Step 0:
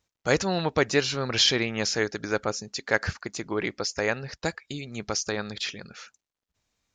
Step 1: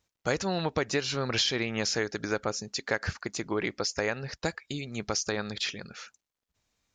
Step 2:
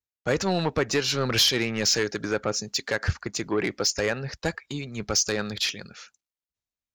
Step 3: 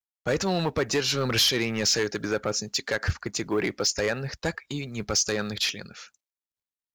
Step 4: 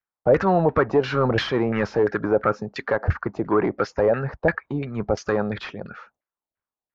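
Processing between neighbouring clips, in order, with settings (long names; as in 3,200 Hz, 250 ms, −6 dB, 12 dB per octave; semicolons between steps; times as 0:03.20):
downward compressor, threshold −24 dBFS, peak gain reduction 8 dB
soft clipping −24.5 dBFS, distortion −12 dB; multiband upward and downward expander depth 70%; level +7 dB
in parallel at −6 dB: sine wavefolder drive 6 dB, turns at −10 dBFS; on the sum: log-companded quantiser 8 bits; level −7.5 dB
auto-filter low-pass saw down 2.9 Hz 610–1,800 Hz; level +5 dB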